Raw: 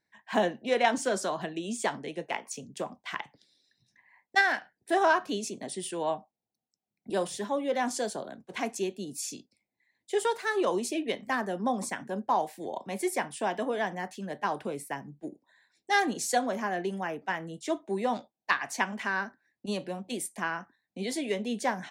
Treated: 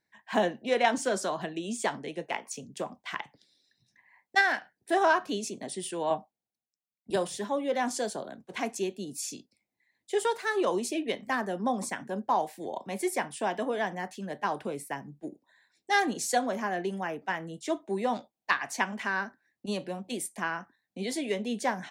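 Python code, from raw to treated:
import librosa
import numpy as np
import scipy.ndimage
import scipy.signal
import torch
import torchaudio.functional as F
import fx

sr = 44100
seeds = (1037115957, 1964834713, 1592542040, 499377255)

y = fx.band_widen(x, sr, depth_pct=70, at=(6.1, 7.16))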